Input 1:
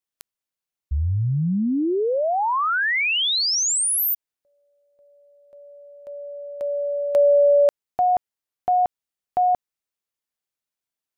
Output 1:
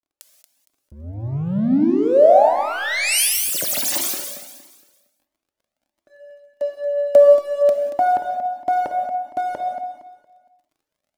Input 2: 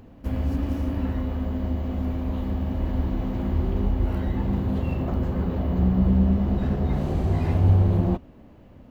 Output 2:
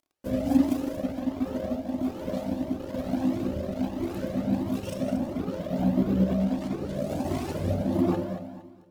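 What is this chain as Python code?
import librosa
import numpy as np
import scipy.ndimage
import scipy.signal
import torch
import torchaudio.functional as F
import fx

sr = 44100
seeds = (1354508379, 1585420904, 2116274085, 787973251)

p1 = fx.tracing_dist(x, sr, depth_ms=0.32)
p2 = scipy.signal.sosfilt(scipy.signal.butter(2, 140.0, 'highpass', fs=sr, output='sos'), p1)
p3 = fx.dereverb_blind(p2, sr, rt60_s=1.8)
p4 = fx.high_shelf(p3, sr, hz=3100.0, db=10.5)
p5 = fx.rider(p4, sr, range_db=4, speed_s=2.0)
p6 = p4 + (p5 * 10.0 ** (-2.0 / 20.0))
p7 = fx.rotary(p6, sr, hz=1.2)
p8 = np.sign(p7) * np.maximum(np.abs(p7) - 10.0 ** (-35.0 / 20.0), 0.0)
p9 = fx.dmg_crackle(p8, sr, seeds[0], per_s=20.0, level_db=-47.0)
p10 = fx.small_body(p9, sr, hz=(280.0, 580.0), ring_ms=25, db=15)
p11 = p10 + fx.echo_feedback(p10, sr, ms=231, feedback_pct=33, wet_db=-10.0, dry=0)
p12 = fx.rev_gated(p11, sr, seeds[1], gate_ms=220, shape='flat', drr_db=5.0)
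p13 = fx.comb_cascade(p12, sr, direction='rising', hz=1.5)
y = p13 * 10.0 ** (-3.0 / 20.0)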